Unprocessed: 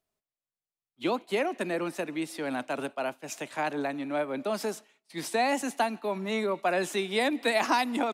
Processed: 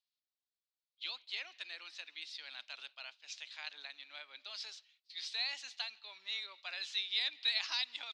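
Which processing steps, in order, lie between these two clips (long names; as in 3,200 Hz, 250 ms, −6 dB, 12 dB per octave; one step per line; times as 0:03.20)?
four-pole ladder band-pass 4,800 Hz, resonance 50%
high-frequency loss of the air 210 metres
level +15 dB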